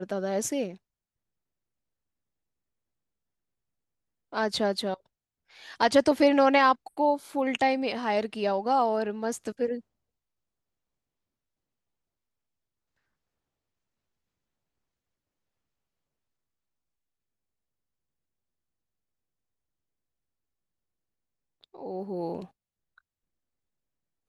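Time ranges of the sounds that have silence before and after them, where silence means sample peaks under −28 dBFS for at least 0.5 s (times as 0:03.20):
0:04.34–0:04.94
0:05.80–0:09.75
0:21.86–0:22.40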